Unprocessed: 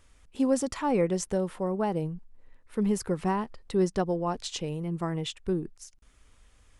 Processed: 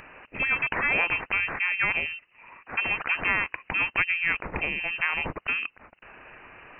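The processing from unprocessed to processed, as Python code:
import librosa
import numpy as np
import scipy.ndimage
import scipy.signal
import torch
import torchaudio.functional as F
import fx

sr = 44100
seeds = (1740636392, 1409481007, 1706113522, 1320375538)

y = scipy.signal.sosfilt(scipy.signal.butter(2, 300.0, 'highpass', fs=sr, output='sos'), x)
y = fx.freq_invert(y, sr, carrier_hz=2900)
y = fx.spectral_comp(y, sr, ratio=2.0)
y = y * librosa.db_to_amplitude(6.0)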